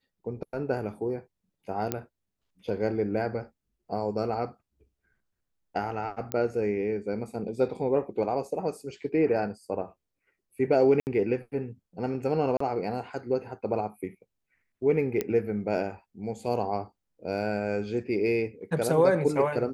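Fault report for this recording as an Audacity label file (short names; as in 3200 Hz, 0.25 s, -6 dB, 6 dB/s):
1.920000	1.920000	pop -12 dBFS
6.320000	6.320000	pop -14 dBFS
11.000000	11.070000	gap 69 ms
12.570000	12.600000	gap 34 ms
15.210000	15.210000	pop -14 dBFS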